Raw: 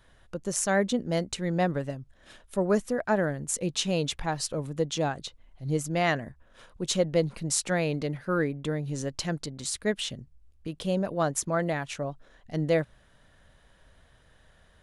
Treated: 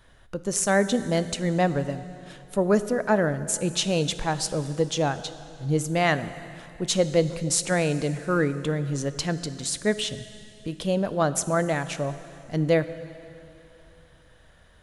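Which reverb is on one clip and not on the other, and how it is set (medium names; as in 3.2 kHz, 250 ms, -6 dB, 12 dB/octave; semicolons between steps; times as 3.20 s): plate-style reverb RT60 2.8 s, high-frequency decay 0.95×, DRR 12.5 dB; trim +3.5 dB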